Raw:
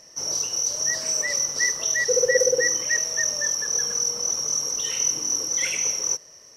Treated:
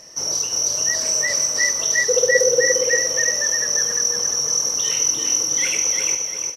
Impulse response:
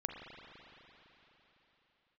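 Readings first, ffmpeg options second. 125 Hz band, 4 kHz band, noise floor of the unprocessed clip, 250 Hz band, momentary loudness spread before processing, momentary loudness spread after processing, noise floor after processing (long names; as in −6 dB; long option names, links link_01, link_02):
+4.0 dB, +5.0 dB, −49 dBFS, +5.0 dB, 5 LU, 4 LU, −27 dBFS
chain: -filter_complex "[0:a]asplit=2[link_01][link_02];[link_02]acompressor=threshold=-30dB:ratio=6,volume=-2dB[link_03];[link_01][link_03]amix=inputs=2:normalize=0,aecho=1:1:348|696|1044|1392:0.596|0.191|0.061|0.0195,volume=1dB"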